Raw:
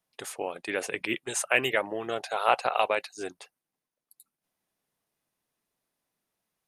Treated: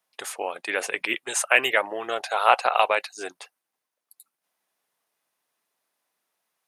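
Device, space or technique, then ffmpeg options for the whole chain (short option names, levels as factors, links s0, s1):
filter by subtraction: -filter_complex "[0:a]asplit=2[s0][s1];[s1]lowpass=980,volume=-1[s2];[s0][s2]amix=inputs=2:normalize=0,volume=1.68"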